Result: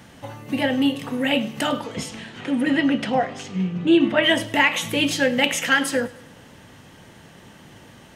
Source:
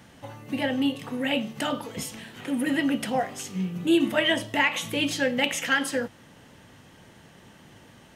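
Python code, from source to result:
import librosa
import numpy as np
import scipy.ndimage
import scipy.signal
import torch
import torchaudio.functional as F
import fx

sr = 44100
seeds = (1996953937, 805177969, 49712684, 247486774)

y = fx.lowpass(x, sr, hz=fx.line((1.8, 7200.0), (4.22, 3200.0)), slope=12, at=(1.8, 4.22), fade=0.02)
y = fx.echo_feedback(y, sr, ms=103, feedback_pct=51, wet_db=-21)
y = y * librosa.db_to_amplitude(5.0)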